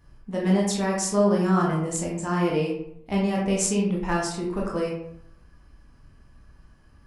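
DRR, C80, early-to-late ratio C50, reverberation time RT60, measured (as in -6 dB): -3.5 dB, 6.5 dB, 3.0 dB, 0.75 s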